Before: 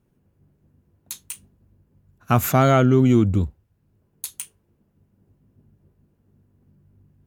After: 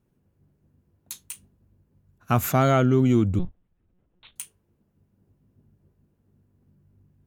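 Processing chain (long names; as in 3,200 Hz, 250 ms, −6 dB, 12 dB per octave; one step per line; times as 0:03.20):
0:03.39–0:04.36: one-pitch LPC vocoder at 8 kHz 180 Hz
level −3.5 dB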